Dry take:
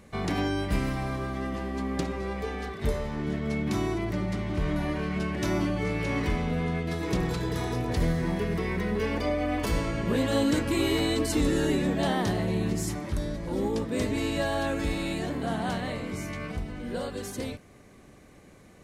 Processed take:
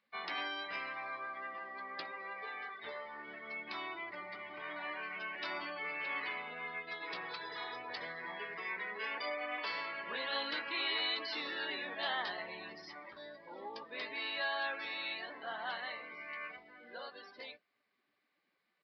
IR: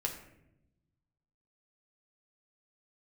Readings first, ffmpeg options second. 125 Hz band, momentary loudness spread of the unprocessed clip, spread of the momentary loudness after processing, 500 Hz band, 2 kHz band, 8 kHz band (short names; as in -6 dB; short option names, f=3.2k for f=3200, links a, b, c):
-37.5 dB, 8 LU, 12 LU, -16.0 dB, -2.5 dB, under -30 dB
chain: -filter_complex "[0:a]afftdn=nr=18:nf=-41,highpass=1.2k,asplit=2[a][b];[b]adelay=17,volume=-12.5dB[c];[a][c]amix=inputs=2:normalize=0,aresample=11025,aresample=44100,volume=-1dB"